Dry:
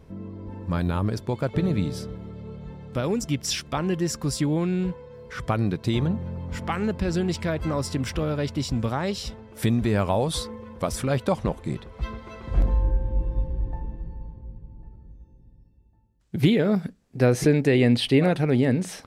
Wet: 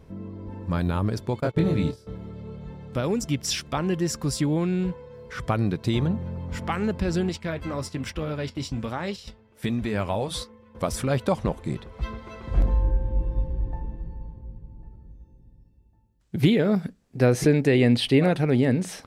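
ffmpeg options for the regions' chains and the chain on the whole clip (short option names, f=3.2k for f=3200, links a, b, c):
-filter_complex "[0:a]asettb=1/sr,asplit=3[a][b][c];[a]atrim=end=1.404[d];[b]atrim=start=1.4:end=2.07,asetpts=PTS-STARTPTS,afade=t=in:d=0.004:c=qsin,afade=t=out:st=0.666:d=0.004:c=qsin,asplit=2[e][f];[f]adelay=25,volume=-3dB[g];[e][g]amix=inputs=2:normalize=0,atrim=end_sample=29547,agate=range=-20dB:threshold=-28dB:ratio=16:release=100:detection=peak[h];[c]atrim=start=2.066[i];[d][h]acrossfade=d=0.004:c1=hsin:c2=qsin[j];[j][i]acrossfade=d=0.004:c1=qsin:c2=hsin,asettb=1/sr,asplit=3[k][l][m];[k]atrim=end=7.294[n];[l]atrim=start=7.29:end=10.75,asetpts=PTS-STARTPTS,afade=t=in:d=0.004:c=qsin,afade=t=out:st=3.456:d=0.004:c=qsin,agate=range=-9dB:threshold=-33dB:ratio=16:release=100:detection=peak,equalizer=f=2.4k:w=0.87:g=4,flanger=delay=3.4:depth=6.4:regen=-66:speed=1.2:shape=sinusoidal[o];[m]atrim=start=10.746[p];[n][o]acrossfade=d=0.004:c1=hsin:c2=qsin[q];[q][p]acrossfade=d=0.004:c1=qsin:c2=hsin"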